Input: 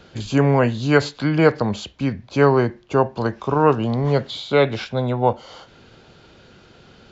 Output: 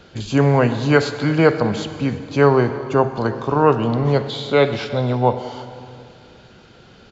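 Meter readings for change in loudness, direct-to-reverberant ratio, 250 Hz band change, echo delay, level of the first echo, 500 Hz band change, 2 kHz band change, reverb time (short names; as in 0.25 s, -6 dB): +1.5 dB, 10.0 dB, +1.5 dB, 0.332 s, -21.0 dB, +1.5 dB, +1.5 dB, 2.4 s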